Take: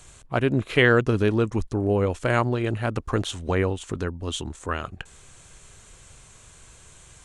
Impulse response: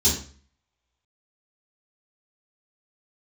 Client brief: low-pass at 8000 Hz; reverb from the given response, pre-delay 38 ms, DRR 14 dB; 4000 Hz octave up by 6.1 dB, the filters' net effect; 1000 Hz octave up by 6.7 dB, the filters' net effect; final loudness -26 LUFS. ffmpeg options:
-filter_complex "[0:a]lowpass=8k,equalizer=f=1k:t=o:g=8.5,equalizer=f=4k:t=o:g=8,asplit=2[a][b];[1:a]atrim=start_sample=2205,adelay=38[c];[b][c]afir=irnorm=-1:irlink=0,volume=-26.5dB[d];[a][d]amix=inputs=2:normalize=0,volume=-4.5dB"

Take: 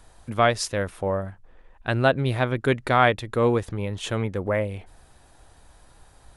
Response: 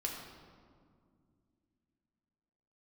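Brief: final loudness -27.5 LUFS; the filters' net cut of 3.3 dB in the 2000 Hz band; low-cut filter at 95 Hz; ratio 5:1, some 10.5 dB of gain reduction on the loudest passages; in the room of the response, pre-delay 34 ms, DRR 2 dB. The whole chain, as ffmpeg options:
-filter_complex "[0:a]highpass=95,equalizer=f=2k:t=o:g=-4.5,acompressor=threshold=-26dB:ratio=5,asplit=2[a][b];[1:a]atrim=start_sample=2205,adelay=34[c];[b][c]afir=irnorm=-1:irlink=0,volume=-3.5dB[d];[a][d]amix=inputs=2:normalize=0,volume=2dB"

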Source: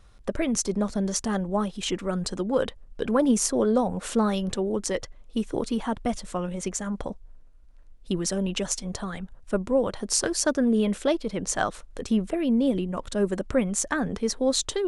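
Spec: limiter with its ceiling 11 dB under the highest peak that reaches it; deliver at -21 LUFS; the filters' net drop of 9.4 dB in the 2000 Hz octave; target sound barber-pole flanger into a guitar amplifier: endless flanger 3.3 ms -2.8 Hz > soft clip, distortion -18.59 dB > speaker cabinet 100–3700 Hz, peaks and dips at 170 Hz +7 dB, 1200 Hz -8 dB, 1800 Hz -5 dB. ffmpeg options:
-filter_complex "[0:a]equalizer=f=2k:t=o:g=-8.5,alimiter=limit=-16.5dB:level=0:latency=1,asplit=2[a][b];[b]adelay=3.3,afreqshift=-2.8[c];[a][c]amix=inputs=2:normalize=1,asoftclip=threshold=-21dB,highpass=100,equalizer=f=170:t=q:w=4:g=7,equalizer=f=1.2k:t=q:w=4:g=-8,equalizer=f=1.8k:t=q:w=4:g=-5,lowpass=f=3.7k:w=0.5412,lowpass=f=3.7k:w=1.3066,volume=11dB"

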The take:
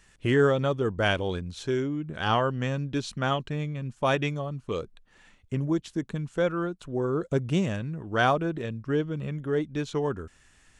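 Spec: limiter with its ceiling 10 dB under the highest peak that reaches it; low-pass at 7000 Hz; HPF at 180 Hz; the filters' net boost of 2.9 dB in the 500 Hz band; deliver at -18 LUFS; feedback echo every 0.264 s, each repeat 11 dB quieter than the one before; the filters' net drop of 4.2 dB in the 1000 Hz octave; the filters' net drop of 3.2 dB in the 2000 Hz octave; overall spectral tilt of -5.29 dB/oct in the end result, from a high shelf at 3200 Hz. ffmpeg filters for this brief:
-af "highpass=180,lowpass=7k,equalizer=f=500:t=o:g=5.5,equalizer=f=1k:t=o:g=-8.5,equalizer=f=2k:t=o:g=-3.5,highshelf=f=3.2k:g=7.5,alimiter=limit=-19dB:level=0:latency=1,aecho=1:1:264|528|792:0.282|0.0789|0.0221,volume=12.5dB"

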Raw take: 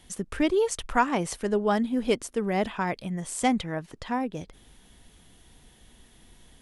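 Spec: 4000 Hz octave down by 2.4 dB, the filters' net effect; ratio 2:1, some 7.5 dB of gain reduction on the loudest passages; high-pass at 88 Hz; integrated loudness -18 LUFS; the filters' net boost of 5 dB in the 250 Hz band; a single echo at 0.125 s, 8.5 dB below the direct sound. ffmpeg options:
-af "highpass=88,equalizer=f=250:t=o:g=6,equalizer=f=4k:t=o:g=-3.5,acompressor=threshold=-30dB:ratio=2,aecho=1:1:125:0.376,volume=12dB"

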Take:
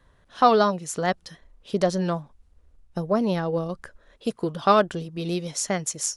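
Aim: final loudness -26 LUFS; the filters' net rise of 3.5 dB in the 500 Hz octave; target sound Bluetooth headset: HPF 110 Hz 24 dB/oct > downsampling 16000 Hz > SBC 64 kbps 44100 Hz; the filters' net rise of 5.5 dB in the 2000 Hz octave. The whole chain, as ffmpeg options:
-af "highpass=f=110:w=0.5412,highpass=f=110:w=1.3066,equalizer=f=500:t=o:g=4,equalizer=f=2k:t=o:g=7,aresample=16000,aresample=44100,volume=-4dB" -ar 44100 -c:a sbc -b:a 64k

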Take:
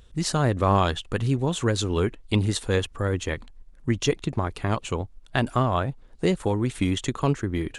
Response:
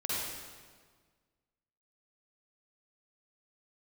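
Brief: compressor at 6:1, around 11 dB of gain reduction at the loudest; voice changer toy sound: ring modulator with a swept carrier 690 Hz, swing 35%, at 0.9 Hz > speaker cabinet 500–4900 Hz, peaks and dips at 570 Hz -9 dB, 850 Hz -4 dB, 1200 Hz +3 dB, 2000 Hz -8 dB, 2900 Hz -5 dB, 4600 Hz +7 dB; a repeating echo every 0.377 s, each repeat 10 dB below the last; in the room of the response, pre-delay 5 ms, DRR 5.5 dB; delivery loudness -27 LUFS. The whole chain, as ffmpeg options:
-filter_complex "[0:a]acompressor=threshold=-29dB:ratio=6,aecho=1:1:377|754|1131|1508:0.316|0.101|0.0324|0.0104,asplit=2[a][b];[1:a]atrim=start_sample=2205,adelay=5[c];[b][c]afir=irnorm=-1:irlink=0,volume=-11.5dB[d];[a][d]amix=inputs=2:normalize=0,aeval=exprs='val(0)*sin(2*PI*690*n/s+690*0.35/0.9*sin(2*PI*0.9*n/s))':c=same,highpass=500,equalizer=f=570:t=q:w=4:g=-9,equalizer=f=850:t=q:w=4:g=-4,equalizer=f=1.2k:t=q:w=4:g=3,equalizer=f=2k:t=q:w=4:g=-8,equalizer=f=2.9k:t=q:w=4:g=-5,equalizer=f=4.6k:t=q:w=4:g=7,lowpass=f=4.9k:w=0.5412,lowpass=f=4.9k:w=1.3066,volume=12dB"

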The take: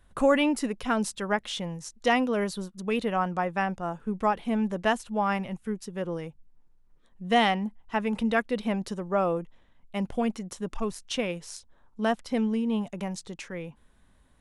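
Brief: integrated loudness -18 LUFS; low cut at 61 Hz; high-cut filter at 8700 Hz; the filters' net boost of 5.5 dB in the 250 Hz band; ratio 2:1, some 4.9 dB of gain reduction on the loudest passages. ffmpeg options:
-af "highpass=61,lowpass=8.7k,equalizer=f=250:t=o:g=6.5,acompressor=threshold=-24dB:ratio=2,volume=10.5dB"

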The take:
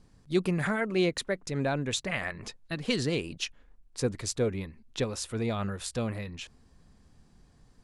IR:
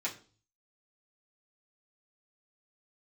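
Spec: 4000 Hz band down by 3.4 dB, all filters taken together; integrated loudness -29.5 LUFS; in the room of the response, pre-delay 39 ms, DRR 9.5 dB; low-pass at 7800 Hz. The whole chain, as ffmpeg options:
-filter_complex "[0:a]lowpass=7.8k,equalizer=f=4k:t=o:g=-4,asplit=2[a][b];[1:a]atrim=start_sample=2205,adelay=39[c];[b][c]afir=irnorm=-1:irlink=0,volume=-13dB[d];[a][d]amix=inputs=2:normalize=0,volume=2dB"

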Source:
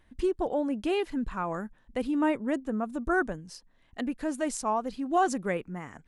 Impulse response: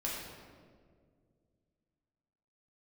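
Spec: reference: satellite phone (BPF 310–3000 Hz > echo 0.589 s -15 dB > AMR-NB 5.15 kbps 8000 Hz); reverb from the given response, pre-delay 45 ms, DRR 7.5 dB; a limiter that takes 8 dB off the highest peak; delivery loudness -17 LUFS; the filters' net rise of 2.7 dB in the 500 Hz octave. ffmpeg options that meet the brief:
-filter_complex "[0:a]equalizer=f=500:t=o:g=5,alimiter=limit=-20.5dB:level=0:latency=1,asplit=2[a][b];[1:a]atrim=start_sample=2205,adelay=45[c];[b][c]afir=irnorm=-1:irlink=0,volume=-11dB[d];[a][d]amix=inputs=2:normalize=0,highpass=310,lowpass=3k,aecho=1:1:589:0.178,volume=15.5dB" -ar 8000 -c:a libopencore_amrnb -b:a 5150

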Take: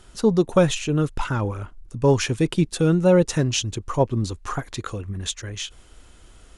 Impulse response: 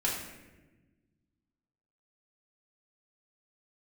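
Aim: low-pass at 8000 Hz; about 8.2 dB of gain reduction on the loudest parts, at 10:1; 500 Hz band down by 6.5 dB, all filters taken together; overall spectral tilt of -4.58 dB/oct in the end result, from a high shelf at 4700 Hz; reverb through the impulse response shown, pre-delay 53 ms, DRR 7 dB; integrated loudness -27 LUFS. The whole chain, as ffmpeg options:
-filter_complex "[0:a]lowpass=8k,equalizer=f=500:t=o:g=-8,highshelf=f=4.7k:g=4.5,acompressor=threshold=-23dB:ratio=10,asplit=2[a][b];[1:a]atrim=start_sample=2205,adelay=53[c];[b][c]afir=irnorm=-1:irlink=0,volume=-14dB[d];[a][d]amix=inputs=2:normalize=0,volume=1.5dB"

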